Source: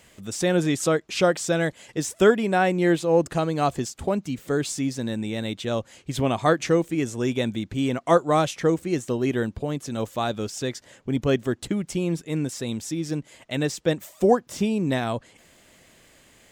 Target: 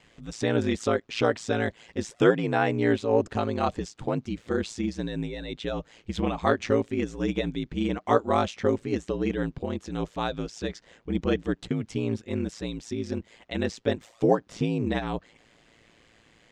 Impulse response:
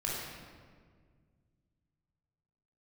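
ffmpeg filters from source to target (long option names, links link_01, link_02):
-af "lowpass=4700,aeval=exprs='val(0)*sin(2*PI*56*n/s)':channel_layout=same,bandreject=frequency=620:width=12"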